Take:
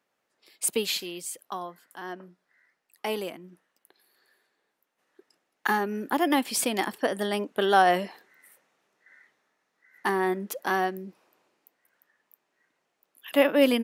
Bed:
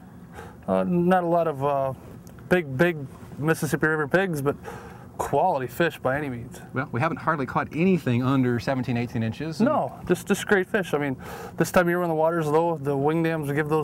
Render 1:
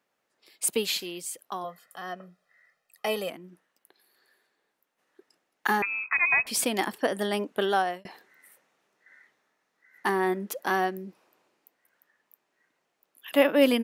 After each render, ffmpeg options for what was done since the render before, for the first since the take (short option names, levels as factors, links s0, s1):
-filter_complex "[0:a]asettb=1/sr,asplit=3[s0][s1][s2];[s0]atrim=end=1.644[s3];[s1]atrim=start=1.64:end=3.3,asetpts=PTS-STARTPTS,afade=t=in:d=0.004:c=qsin,afade=t=out:st=1.656:d=0.004:c=qsin,aecho=1:1:1.6:0.81,atrim=end_sample=73206[s4];[s2]atrim=start=3.296[s5];[s3][s4]acrossfade=d=0.004:c1=hsin:c2=qsin[s6];[s6][s5]acrossfade=d=0.004:c1=qsin:c2=hsin,asettb=1/sr,asplit=3[s7][s8][s9];[s7]atrim=end=5.824[s10];[s8]atrim=start=5.82:end=6.47,asetpts=PTS-STARTPTS,afade=t=in:d=0.004:c=qsin,afade=t=out:st=0.646:d=0.004:c=qsin,lowpass=f=2400:t=q:w=0.5098,lowpass=f=2400:t=q:w=0.6013,lowpass=f=2400:t=q:w=0.9,lowpass=f=2400:t=q:w=2.563,afreqshift=-2800[s11];[s9]atrim=start=6.466[s12];[s10][s11]acrossfade=d=0.004:c1=hsin:c2=qsin[s13];[s13][s12]acrossfade=d=0.004:c1=qsin:c2=hsin,asplit=2[s14][s15];[s14]atrim=end=8.05,asetpts=PTS-STARTPTS,afade=t=out:st=7.55:d=0.5[s16];[s15]atrim=start=8.05,asetpts=PTS-STARTPTS,afade=t=in:d=0.004:c=hsin[s17];[s16][s17]concat=n=2:v=0:a=1"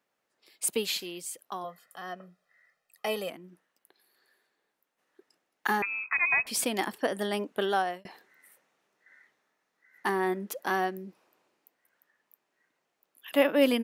-af "volume=0.75"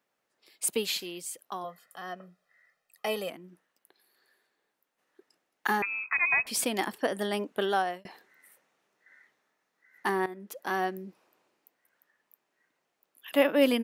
-filter_complex "[0:a]asplit=2[s0][s1];[s0]atrim=end=10.26,asetpts=PTS-STARTPTS,afade=t=out:st=10.256:d=0.004:c=hsin:silence=0.177828[s2];[s1]atrim=start=10.26,asetpts=PTS-STARTPTS,afade=t=in:d=0.63:silence=0.177828[s3];[s2][s3]concat=n=2:v=0:a=1"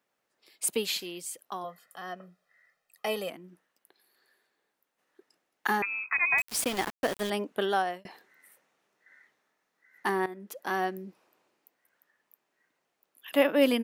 -filter_complex "[0:a]asettb=1/sr,asplit=3[s0][s1][s2];[s0]atrim=end=6.384[s3];[s1]atrim=start=6.38:end=7.3,asetpts=PTS-STARTPTS,afade=t=in:d=0.004:c=qsin,afade=t=out:st=0.916:d=0.004:c=qsin,aeval=exprs='val(0)*gte(abs(val(0)),0.0251)':c=same[s4];[s2]atrim=start=7.296[s5];[s3][s4]acrossfade=d=0.004:c1=hsin:c2=qsin[s6];[s6][s5]acrossfade=d=0.004:c1=qsin:c2=hsin"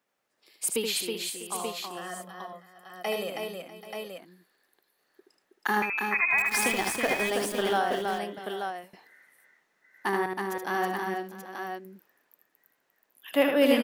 -af "aecho=1:1:76|322|384|646|784|882:0.562|0.596|0.178|0.133|0.15|0.473"